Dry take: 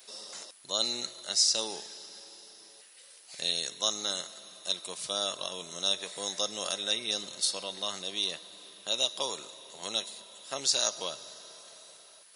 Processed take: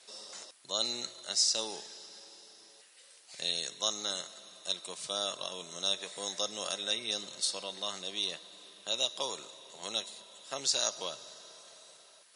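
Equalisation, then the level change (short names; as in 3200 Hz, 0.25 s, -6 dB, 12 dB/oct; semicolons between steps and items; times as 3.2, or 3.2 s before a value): elliptic band-pass 110–8900 Hz; -2.0 dB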